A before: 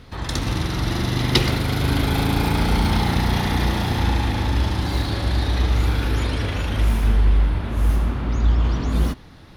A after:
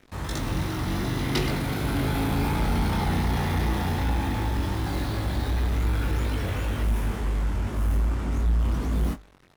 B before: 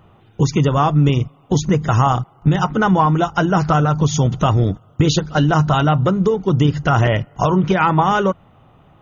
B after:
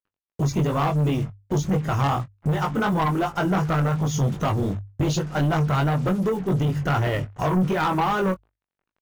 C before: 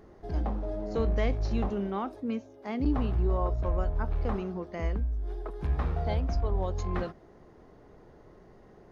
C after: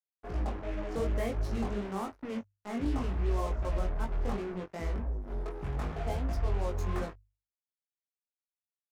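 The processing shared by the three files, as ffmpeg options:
ffmpeg -i in.wav -filter_complex "[0:a]acrusher=bits=5:mix=0:aa=0.5,equalizer=frequency=4100:width=1:gain=-5.5,flanger=delay=18.5:depth=3.2:speed=2.7,bandreject=frequency=50:width_type=h:width=6,bandreject=frequency=100:width_type=h:width=6,asoftclip=type=tanh:threshold=-17.5dB,asplit=2[link_01][link_02];[link_02]adelay=22,volume=-13.5dB[link_03];[link_01][link_03]amix=inputs=2:normalize=0" out.wav

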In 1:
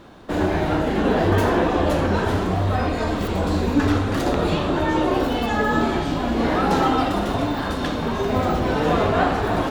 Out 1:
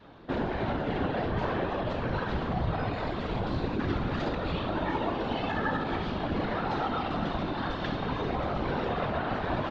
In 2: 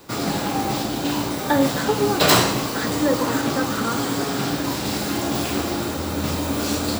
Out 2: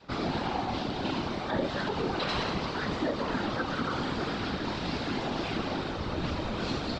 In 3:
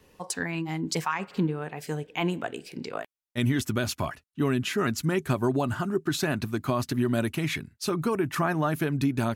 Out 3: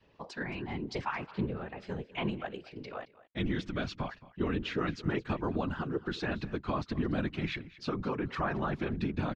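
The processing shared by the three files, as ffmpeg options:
ffmpeg -i in.wav -filter_complex "[0:a]lowpass=frequency=4400:width=0.5412,lowpass=frequency=4400:width=1.3066,adynamicequalizer=threshold=0.02:dfrequency=360:dqfactor=1.5:tfrequency=360:tqfactor=1.5:attack=5:release=100:ratio=0.375:range=2:mode=cutabove:tftype=bell,alimiter=limit=-15.5dB:level=0:latency=1:release=75,afftfilt=real='hypot(re,im)*cos(2*PI*random(0))':imag='hypot(re,im)*sin(2*PI*random(1))':win_size=512:overlap=0.75,asplit=2[link_01][link_02];[link_02]aecho=0:1:221:0.112[link_03];[link_01][link_03]amix=inputs=2:normalize=0" out.wav

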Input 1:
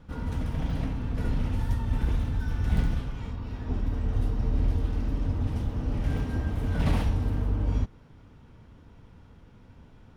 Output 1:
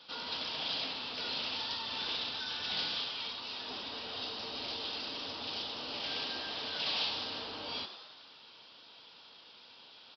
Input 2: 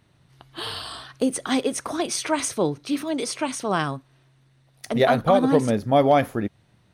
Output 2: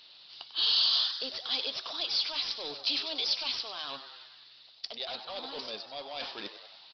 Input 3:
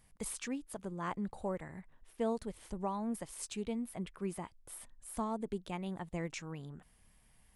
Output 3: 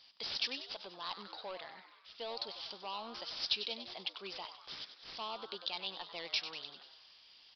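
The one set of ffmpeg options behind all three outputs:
ffmpeg -i in.wav -filter_complex "[0:a]highpass=660,areverse,acompressor=threshold=-38dB:ratio=12,areverse,asoftclip=type=tanh:threshold=-38.5dB,aexciter=amount=6.4:drive=8.2:freq=2900,acrusher=bits=5:mode=log:mix=0:aa=0.000001,asplit=9[link_01][link_02][link_03][link_04][link_05][link_06][link_07][link_08][link_09];[link_02]adelay=96,afreqshift=120,volume=-10.5dB[link_10];[link_03]adelay=192,afreqshift=240,volume=-14.5dB[link_11];[link_04]adelay=288,afreqshift=360,volume=-18.5dB[link_12];[link_05]adelay=384,afreqshift=480,volume=-22.5dB[link_13];[link_06]adelay=480,afreqshift=600,volume=-26.6dB[link_14];[link_07]adelay=576,afreqshift=720,volume=-30.6dB[link_15];[link_08]adelay=672,afreqshift=840,volume=-34.6dB[link_16];[link_09]adelay=768,afreqshift=960,volume=-38.6dB[link_17];[link_01][link_10][link_11][link_12][link_13][link_14][link_15][link_16][link_17]amix=inputs=9:normalize=0,aresample=11025,aresample=44100,volume=2dB" out.wav

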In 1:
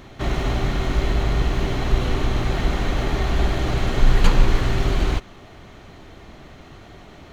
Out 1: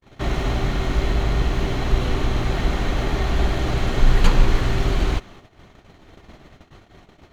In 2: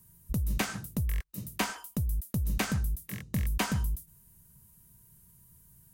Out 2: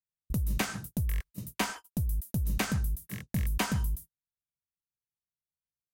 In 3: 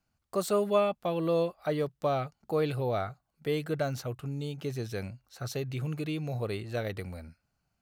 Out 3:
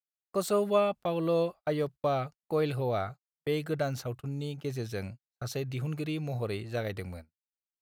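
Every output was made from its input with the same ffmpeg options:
ffmpeg -i in.wav -af "agate=range=-46dB:threshold=-41dB:ratio=16:detection=peak" out.wav

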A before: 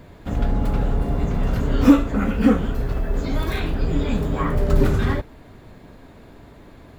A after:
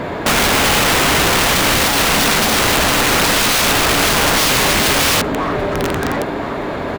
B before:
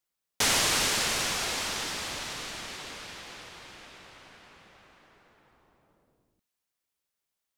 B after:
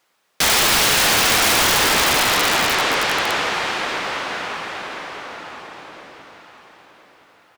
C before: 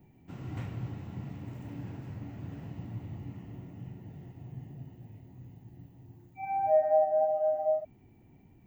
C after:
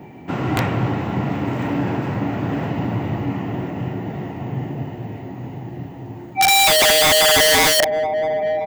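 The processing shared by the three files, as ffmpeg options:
ffmpeg -i in.wav -filter_complex "[0:a]asplit=2[link_01][link_02];[link_02]highpass=frequency=720:poles=1,volume=37dB,asoftclip=type=tanh:threshold=-1dB[link_03];[link_01][link_03]amix=inputs=2:normalize=0,lowpass=frequency=1300:poles=1,volume=-6dB,aecho=1:1:1018|2036|3054|4072:0.282|0.0958|0.0326|0.0111,aeval=exprs='(mod(3.16*val(0)+1,2)-1)/3.16':channel_layout=same" out.wav

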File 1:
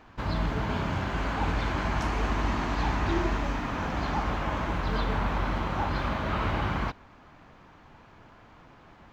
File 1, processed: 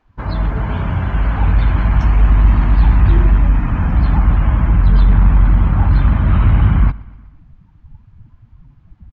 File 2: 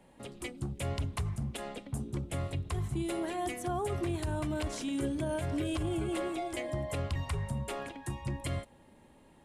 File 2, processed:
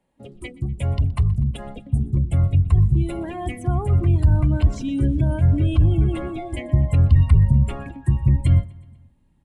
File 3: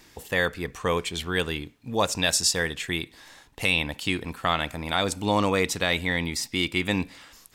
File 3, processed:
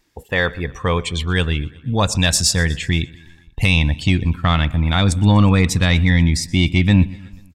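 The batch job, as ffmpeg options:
ffmpeg -i in.wav -af "afftdn=noise_reduction=18:noise_floor=-41,asubboost=boost=8.5:cutoff=160,acontrast=57,aecho=1:1:122|244|366|488:0.0794|0.0469|0.0277|0.0163" out.wav

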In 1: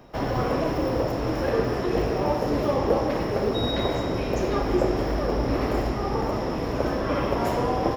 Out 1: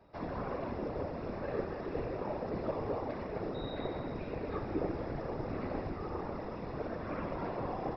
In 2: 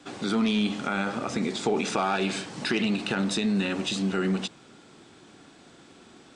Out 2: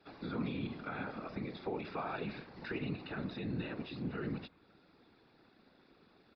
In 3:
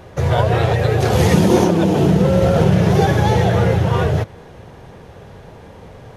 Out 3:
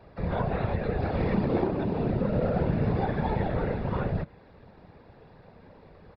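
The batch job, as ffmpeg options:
ffmpeg -i in.wav -filter_complex "[0:a]bandreject=frequency=3100:width=5.4,acrossover=split=170|700|3300[link_01][link_02][link_03][link_04];[link_04]acompressor=threshold=-49dB:ratio=6[link_05];[link_01][link_02][link_03][link_05]amix=inputs=4:normalize=0,afftfilt=real='hypot(re,im)*cos(2*PI*random(0))':imag='hypot(re,im)*sin(2*PI*random(1))':win_size=512:overlap=0.75,aresample=11025,aresample=44100,volume=-7dB" out.wav

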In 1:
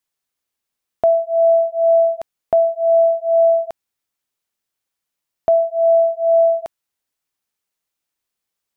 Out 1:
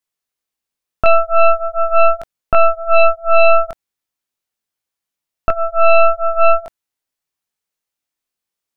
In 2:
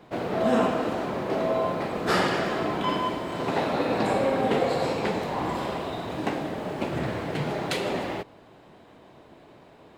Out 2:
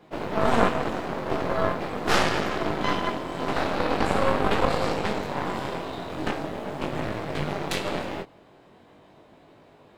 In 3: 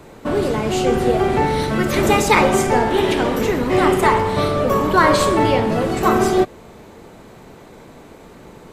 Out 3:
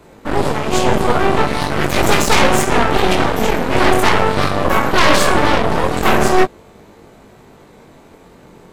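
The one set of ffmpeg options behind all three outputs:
ffmpeg -i in.wav -af "apsyclip=6dB,flanger=delay=19:depth=3.8:speed=0.42,aeval=exprs='1.06*(cos(1*acos(clip(val(0)/1.06,-1,1)))-cos(1*PI/2))+0.473*(cos(6*acos(clip(val(0)/1.06,-1,1)))-cos(6*PI/2))':channel_layout=same,volume=-5dB" out.wav

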